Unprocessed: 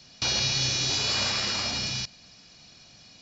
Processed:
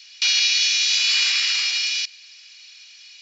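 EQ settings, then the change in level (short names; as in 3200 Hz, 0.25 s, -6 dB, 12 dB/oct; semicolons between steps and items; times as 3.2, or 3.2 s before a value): resonant high-pass 2400 Hz, resonance Q 2; +5.0 dB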